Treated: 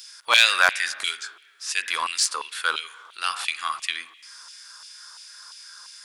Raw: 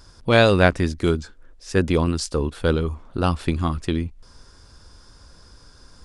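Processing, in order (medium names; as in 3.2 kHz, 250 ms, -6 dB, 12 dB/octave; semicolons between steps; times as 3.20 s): tilt EQ +3.5 dB/octave; spring tank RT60 1.4 s, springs 40/51 ms, chirp 50 ms, DRR 18 dB; wavefolder -2.5 dBFS; harmonic-percussive split harmonic +6 dB; in parallel at -10.5 dB: overload inside the chain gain 17 dB; on the sum: LFO high-pass saw down 2.9 Hz 990–2800 Hz; trim -4.5 dB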